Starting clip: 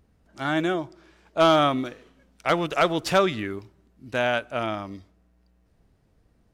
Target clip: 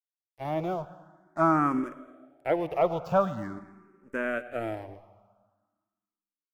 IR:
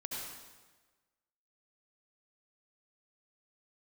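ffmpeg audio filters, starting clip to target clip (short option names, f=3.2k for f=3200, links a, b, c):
-filter_complex "[0:a]aemphasis=mode=reproduction:type=75kf,aeval=exprs='sgn(val(0))*max(abs(val(0))-0.00891,0)':c=same,equalizer=f=3.6k:w=1.3:g=-11,acrossover=split=2600[a][b];[b]acompressor=threshold=-47dB:ratio=4:attack=1:release=60[c];[a][c]amix=inputs=2:normalize=0,asplit=2[d][e];[e]adelay=221.6,volume=-22dB,highshelf=f=4k:g=-4.99[f];[d][f]amix=inputs=2:normalize=0,asplit=2[g][h];[1:a]atrim=start_sample=2205,asetrate=36603,aresample=44100[i];[h][i]afir=irnorm=-1:irlink=0,volume=-17dB[j];[g][j]amix=inputs=2:normalize=0,asplit=2[k][l];[l]afreqshift=0.44[m];[k][m]amix=inputs=2:normalize=1"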